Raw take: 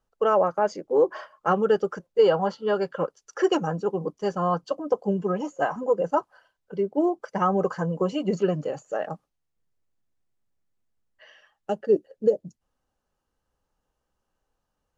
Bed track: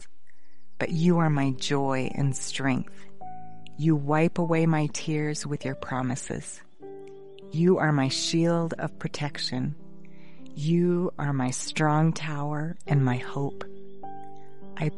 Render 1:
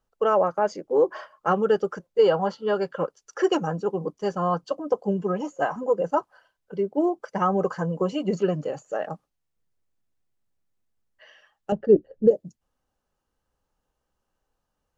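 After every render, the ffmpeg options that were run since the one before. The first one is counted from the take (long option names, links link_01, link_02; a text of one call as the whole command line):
ffmpeg -i in.wav -filter_complex "[0:a]asettb=1/sr,asplit=3[link_01][link_02][link_03];[link_01]atrim=end=11.724[link_04];[link_02]atrim=start=11.72:end=12.31,asetpts=PTS-STARTPTS,afade=type=in:duration=0.004:curve=qsin,afade=type=out:start_time=0.586:duration=0.004:curve=qsin,aemphasis=mode=reproduction:type=riaa[link_05];[link_03]atrim=start=12.306[link_06];[link_04][link_05]acrossfade=duration=0.004:curve1=hsin:curve2=qsin[link_07];[link_07][link_06]acrossfade=duration=0.004:curve1=qsin:curve2=hsin" out.wav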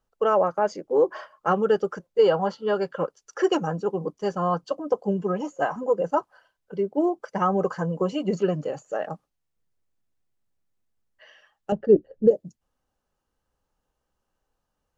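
ffmpeg -i in.wav -af anull out.wav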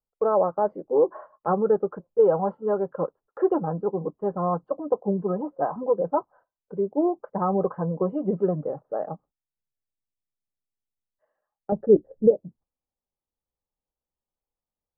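ffmpeg -i in.wav -af "lowpass=frequency=1100:width=0.5412,lowpass=frequency=1100:width=1.3066,agate=range=-15dB:threshold=-53dB:ratio=16:detection=peak" out.wav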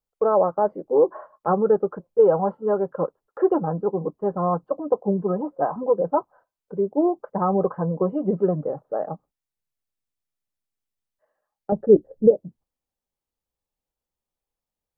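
ffmpeg -i in.wav -af "volume=2.5dB" out.wav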